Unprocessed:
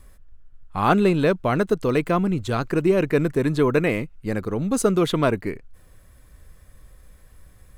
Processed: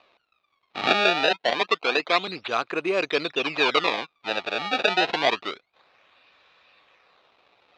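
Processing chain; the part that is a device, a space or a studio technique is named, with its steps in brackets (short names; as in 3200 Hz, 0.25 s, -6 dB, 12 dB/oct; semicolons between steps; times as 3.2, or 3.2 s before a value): 1.33–2.28 HPF 200 Hz 12 dB/oct; circuit-bent sampling toy (decimation with a swept rate 24×, swing 160% 0.27 Hz; speaker cabinet 510–4700 Hz, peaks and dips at 730 Hz +4 dB, 1200 Hz +5 dB, 2500 Hz +10 dB, 3800 Hz +10 dB); gain -1 dB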